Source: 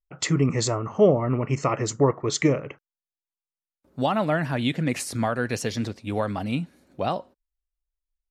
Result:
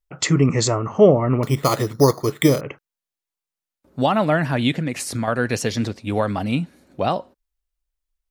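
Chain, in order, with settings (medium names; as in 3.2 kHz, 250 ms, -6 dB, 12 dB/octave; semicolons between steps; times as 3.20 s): 1.43–2.61 s: careless resampling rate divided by 8×, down filtered, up hold; 4.78–5.28 s: compression, threshold -26 dBFS, peak gain reduction 7 dB; trim +5 dB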